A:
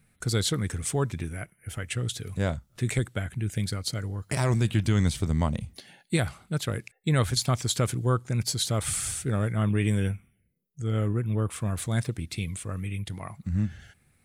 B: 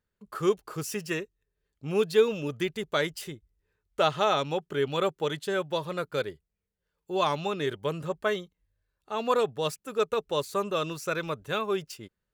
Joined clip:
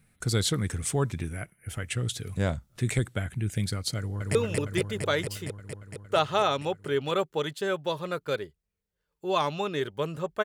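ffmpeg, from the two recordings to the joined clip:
ffmpeg -i cue0.wav -i cue1.wav -filter_complex "[0:a]apad=whole_dur=10.44,atrim=end=10.44,atrim=end=4.352[link_01];[1:a]atrim=start=2.208:end=8.3[link_02];[link_01][link_02]acrossfade=duration=0.004:curve1=hsin:curve2=hsin,asplit=2[link_03][link_04];[link_04]afade=type=in:start_time=3.97:duration=0.01,afade=type=out:start_time=4.35:duration=0.01,aecho=0:1:230|460|690|920|1150|1380|1610|1840|2070|2300|2530|2760:0.841395|0.673116|0.538493|0.430794|0.344635|0.275708|0.220567|0.176453|0.141163|0.11293|0.0903441|0.0722753[link_05];[link_03][link_05]amix=inputs=2:normalize=0" out.wav

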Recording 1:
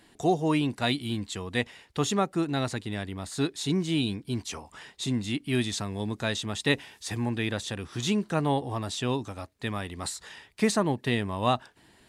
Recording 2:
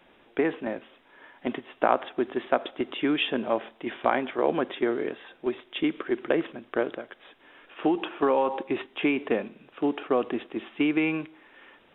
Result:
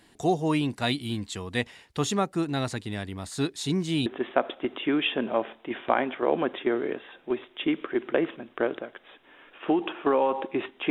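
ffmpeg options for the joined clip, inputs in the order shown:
ffmpeg -i cue0.wav -i cue1.wav -filter_complex "[0:a]apad=whole_dur=10.9,atrim=end=10.9,atrim=end=4.062[link_01];[1:a]atrim=start=2.218:end=9.06[link_02];[link_01][link_02]acrossfade=duration=0.004:curve1=hsin:curve2=hsin" out.wav

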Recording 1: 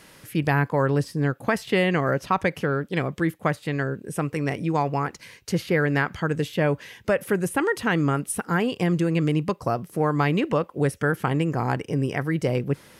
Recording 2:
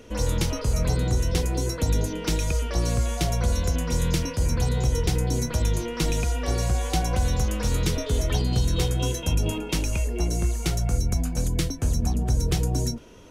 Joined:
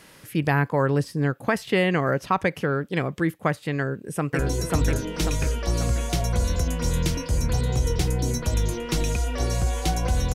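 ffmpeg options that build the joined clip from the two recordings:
ffmpeg -i cue0.wav -i cue1.wav -filter_complex "[0:a]apad=whole_dur=10.34,atrim=end=10.34,atrim=end=4.392[link_01];[1:a]atrim=start=1.468:end=7.42[link_02];[link_01][link_02]acrossfade=duration=0.004:curve1=hsin:curve2=hsin,asplit=2[link_03][link_04];[link_04]afade=type=in:start_time=3.79:duration=0.01,afade=type=out:start_time=4.39:duration=0.01,aecho=0:1:540|1080|1620|2160|2700|3240|3780:0.944061|0.47203|0.236015|0.118008|0.0590038|0.0295019|0.014751[link_05];[link_03][link_05]amix=inputs=2:normalize=0" out.wav

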